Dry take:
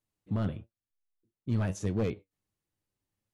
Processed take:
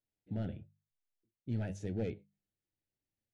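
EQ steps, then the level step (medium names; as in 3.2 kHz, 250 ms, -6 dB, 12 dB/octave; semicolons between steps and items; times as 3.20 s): Butterworth band-stop 1.1 kHz, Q 1.8; treble shelf 5.9 kHz -10.5 dB; hum notches 50/100/150/200 Hz; -6.0 dB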